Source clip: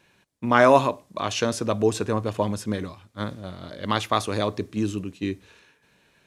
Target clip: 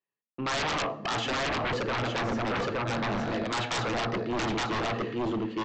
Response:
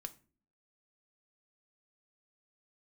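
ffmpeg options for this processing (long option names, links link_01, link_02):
-filter_complex "[0:a]asetrate=48951,aresample=44100,aecho=1:1:866:0.422,agate=range=-45dB:threshold=-49dB:ratio=16:detection=peak,areverse,acompressor=threshold=-30dB:ratio=5,areverse,lowshelf=frequency=190:gain=-10.5[link_01];[1:a]atrim=start_sample=2205,asetrate=32193,aresample=44100[link_02];[link_01][link_02]afir=irnorm=-1:irlink=0,acontrast=43,highpass=100,lowpass=2300,aresample=16000,aeval=exprs='0.119*sin(PI/2*5.62*val(0)/0.119)':channel_layout=same,aresample=44100,volume=-7.5dB"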